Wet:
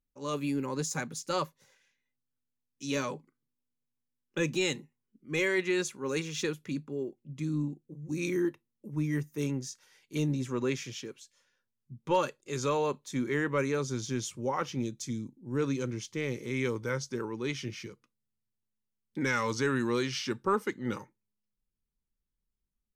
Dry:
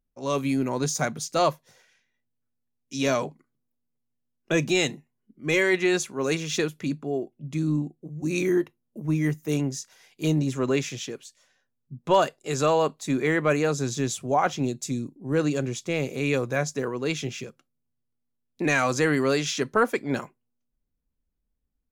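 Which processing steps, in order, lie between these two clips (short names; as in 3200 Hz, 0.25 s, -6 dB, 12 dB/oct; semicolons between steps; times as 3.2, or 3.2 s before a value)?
speed glide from 105% -> 86%; Butterworth band-stop 680 Hz, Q 3.7; gain -6.5 dB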